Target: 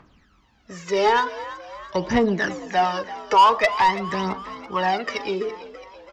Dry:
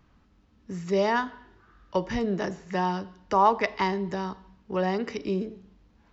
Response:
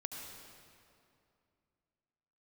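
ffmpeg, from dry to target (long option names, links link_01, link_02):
-filter_complex "[0:a]aphaser=in_gain=1:out_gain=1:delay=2.4:decay=0.72:speed=0.46:type=triangular,asplit=2[link_01][link_02];[link_02]highpass=frequency=720:poles=1,volume=16dB,asoftclip=type=tanh:threshold=-4.5dB[link_03];[link_01][link_03]amix=inputs=2:normalize=0,lowpass=frequency=5500:poles=1,volume=-6dB,asplit=6[link_04][link_05][link_06][link_07][link_08][link_09];[link_05]adelay=333,afreqshift=67,volume=-15.5dB[link_10];[link_06]adelay=666,afreqshift=134,volume=-20.5dB[link_11];[link_07]adelay=999,afreqshift=201,volume=-25.6dB[link_12];[link_08]adelay=1332,afreqshift=268,volume=-30.6dB[link_13];[link_09]adelay=1665,afreqshift=335,volume=-35.6dB[link_14];[link_04][link_10][link_11][link_12][link_13][link_14]amix=inputs=6:normalize=0,volume=-2.5dB"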